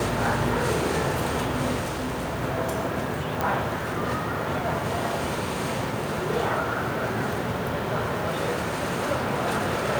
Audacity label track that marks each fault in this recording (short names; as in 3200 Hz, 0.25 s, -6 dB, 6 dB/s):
1.790000	2.420000	clipped -25.5 dBFS
3.410000	3.410000	pop